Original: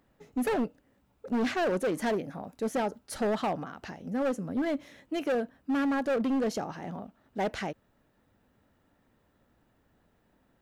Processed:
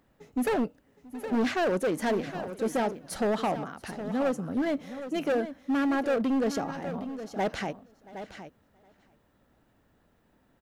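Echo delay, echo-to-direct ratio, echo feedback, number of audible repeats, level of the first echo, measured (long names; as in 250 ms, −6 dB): 677 ms, −11.0 dB, repeats not evenly spaced, 3, −22.5 dB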